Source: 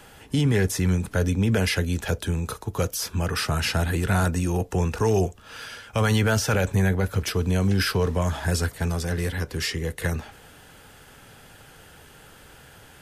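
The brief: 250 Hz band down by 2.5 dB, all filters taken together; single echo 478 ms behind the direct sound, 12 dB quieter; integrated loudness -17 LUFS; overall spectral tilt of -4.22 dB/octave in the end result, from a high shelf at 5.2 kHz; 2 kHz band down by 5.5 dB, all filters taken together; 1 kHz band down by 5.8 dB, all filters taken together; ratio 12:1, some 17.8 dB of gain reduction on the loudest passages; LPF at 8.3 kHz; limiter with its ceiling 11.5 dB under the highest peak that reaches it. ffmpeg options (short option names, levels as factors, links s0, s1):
-af "lowpass=8300,equalizer=f=250:t=o:g=-3.5,equalizer=f=1000:t=o:g=-6.5,equalizer=f=2000:t=o:g=-6,highshelf=f=5200:g=8,acompressor=threshold=0.0141:ratio=12,alimiter=level_in=4.22:limit=0.0631:level=0:latency=1,volume=0.237,aecho=1:1:478:0.251,volume=26.6"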